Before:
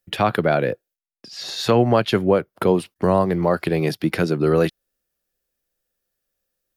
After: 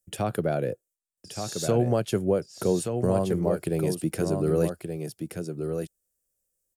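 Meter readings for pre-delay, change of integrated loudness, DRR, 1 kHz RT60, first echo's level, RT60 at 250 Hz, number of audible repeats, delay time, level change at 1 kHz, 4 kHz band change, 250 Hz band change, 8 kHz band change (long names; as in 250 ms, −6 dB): no reverb audible, −7.5 dB, no reverb audible, no reverb audible, −6.5 dB, no reverb audible, 1, 1,175 ms, −11.5 dB, −11.0 dB, −6.0 dB, +3.5 dB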